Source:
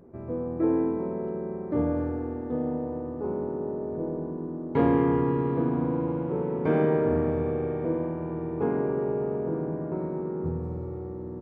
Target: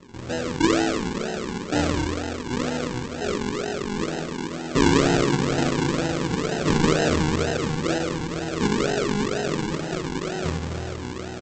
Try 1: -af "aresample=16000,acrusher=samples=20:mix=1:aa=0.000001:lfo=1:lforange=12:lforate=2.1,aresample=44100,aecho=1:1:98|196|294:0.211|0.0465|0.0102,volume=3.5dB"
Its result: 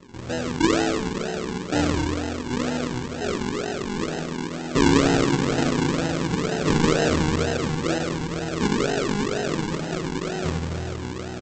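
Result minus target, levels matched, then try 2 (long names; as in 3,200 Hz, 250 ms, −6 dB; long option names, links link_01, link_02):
echo 35 ms late
-af "aresample=16000,acrusher=samples=20:mix=1:aa=0.000001:lfo=1:lforange=12:lforate=2.1,aresample=44100,aecho=1:1:63|126|189:0.211|0.0465|0.0102,volume=3.5dB"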